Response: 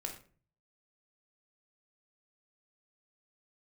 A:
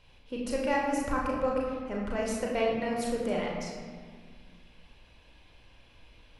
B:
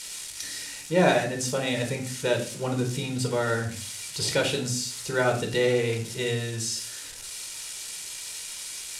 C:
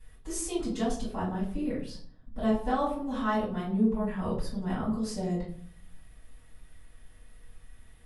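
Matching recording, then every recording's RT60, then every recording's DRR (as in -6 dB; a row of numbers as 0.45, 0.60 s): B; 1.8, 0.40, 0.55 s; -3.0, 2.5, -9.0 dB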